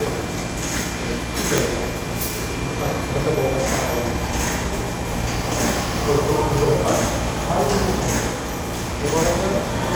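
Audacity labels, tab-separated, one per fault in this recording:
1.580000	1.580000	pop
8.320000	9.050000	clipped -22 dBFS

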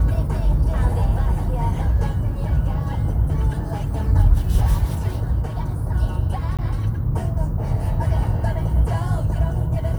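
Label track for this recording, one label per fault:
6.570000	6.590000	dropout 17 ms

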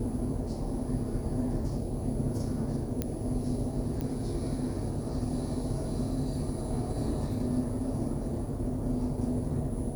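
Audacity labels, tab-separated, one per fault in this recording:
3.020000	3.020000	pop -16 dBFS
4.010000	4.010000	pop -21 dBFS

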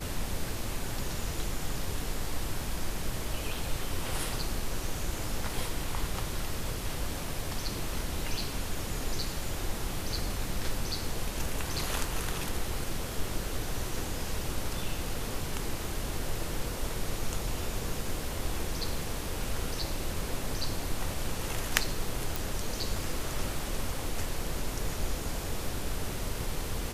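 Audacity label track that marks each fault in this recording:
22.360000	22.360000	pop

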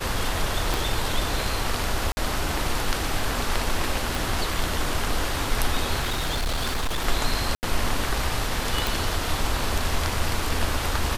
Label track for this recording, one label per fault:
0.740000	0.740000	pop
2.120000	2.170000	dropout 50 ms
4.150000	4.150000	pop
6.000000	7.060000	clipped -21.5 dBFS
7.550000	7.630000	dropout 79 ms
8.870000	8.870000	pop

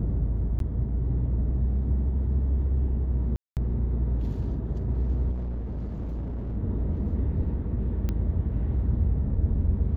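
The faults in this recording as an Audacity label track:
0.590000	0.600000	dropout 12 ms
3.360000	3.570000	dropout 208 ms
5.310000	6.570000	clipped -28.5 dBFS
8.090000	8.090000	pop -17 dBFS

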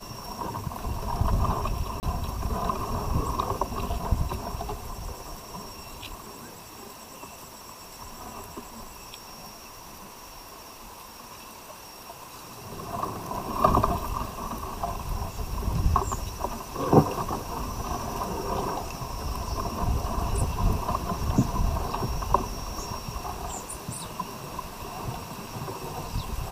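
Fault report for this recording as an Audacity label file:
2.000000	2.030000	dropout 29 ms

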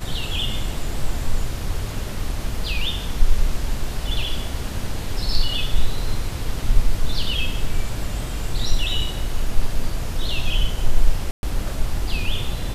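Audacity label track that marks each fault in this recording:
11.310000	11.430000	dropout 121 ms

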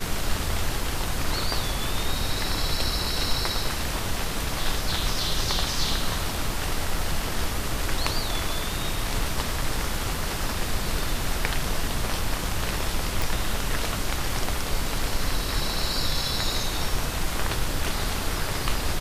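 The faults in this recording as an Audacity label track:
13.220000	13.220000	pop

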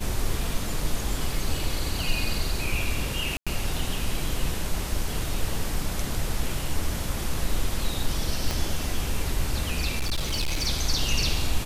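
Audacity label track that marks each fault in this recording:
3.370000	3.470000	dropout 96 ms
8.510000	8.510000	pop
9.980000	10.670000	clipped -22 dBFS

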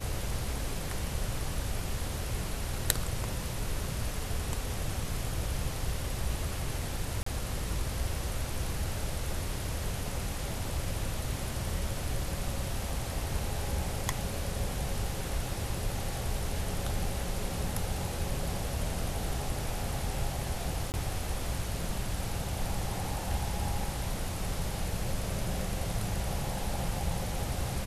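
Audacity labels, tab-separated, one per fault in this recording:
7.230000	7.260000	dropout 34 ms
20.920000	20.940000	dropout 19 ms

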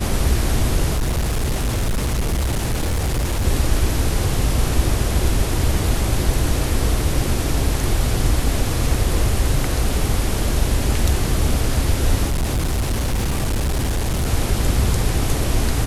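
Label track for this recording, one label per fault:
0.960000	3.460000	clipped -16.5 dBFS
12.270000	14.270000	clipped -16.5 dBFS

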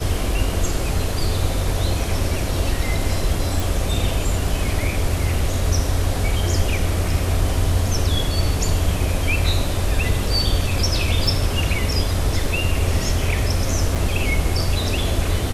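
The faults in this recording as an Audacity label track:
3.600000	3.600000	pop
11.270000	11.270000	dropout 3.2 ms
13.950000	13.960000	dropout 6.7 ms

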